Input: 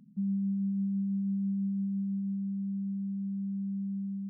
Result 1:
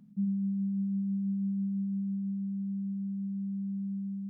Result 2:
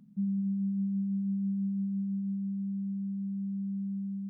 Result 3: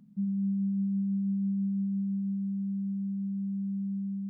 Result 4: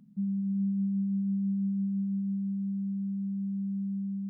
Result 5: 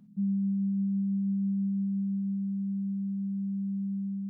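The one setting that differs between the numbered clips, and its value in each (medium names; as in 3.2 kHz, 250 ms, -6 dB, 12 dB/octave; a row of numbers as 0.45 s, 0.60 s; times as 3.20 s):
gated-style reverb, gate: 130 ms, 330 ms, 220 ms, 510 ms, 80 ms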